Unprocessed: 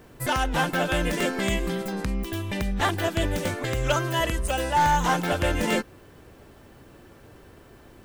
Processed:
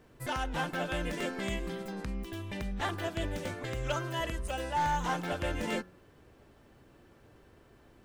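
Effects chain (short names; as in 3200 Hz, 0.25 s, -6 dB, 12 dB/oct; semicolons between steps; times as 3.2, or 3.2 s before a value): high shelf 9200 Hz -8 dB; de-hum 91.34 Hz, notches 19; gain -9 dB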